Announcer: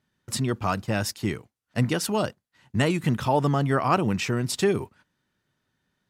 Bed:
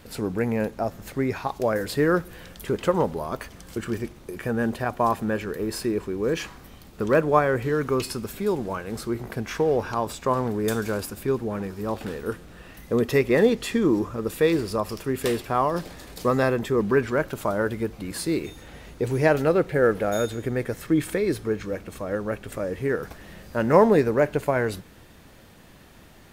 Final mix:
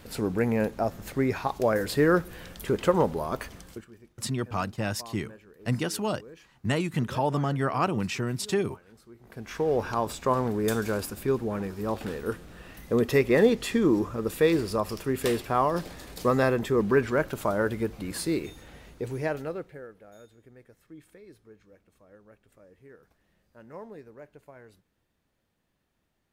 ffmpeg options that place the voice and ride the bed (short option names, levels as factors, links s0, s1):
-filter_complex "[0:a]adelay=3900,volume=0.631[s0];[1:a]volume=11.2,afade=t=out:st=3.54:d=0.32:silence=0.0749894,afade=t=in:st=9.2:d=0.64:silence=0.0841395,afade=t=out:st=18.1:d=1.77:silence=0.0562341[s1];[s0][s1]amix=inputs=2:normalize=0"